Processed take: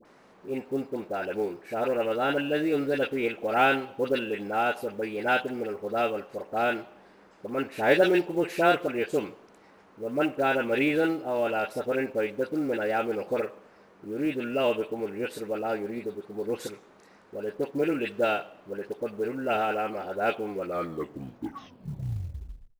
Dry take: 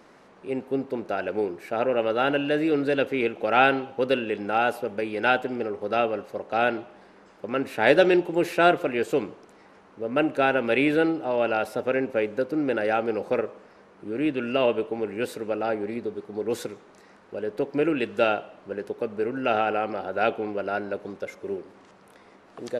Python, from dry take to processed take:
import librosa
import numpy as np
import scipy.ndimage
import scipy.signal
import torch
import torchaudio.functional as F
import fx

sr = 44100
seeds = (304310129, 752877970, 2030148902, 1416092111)

y = fx.tape_stop_end(x, sr, length_s=2.34)
y = fx.dispersion(y, sr, late='highs', ms=54.0, hz=1200.0)
y = fx.quant_float(y, sr, bits=4)
y = F.gain(torch.from_numpy(y), -3.0).numpy()